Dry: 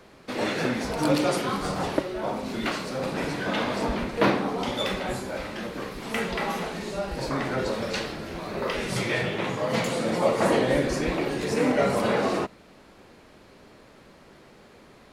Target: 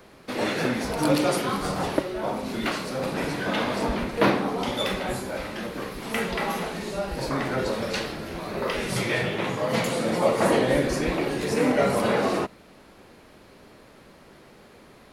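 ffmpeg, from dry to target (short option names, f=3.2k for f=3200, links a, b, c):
-af "aexciter=amount=1.4:drive=6.7:freq=10k,volume=1dB"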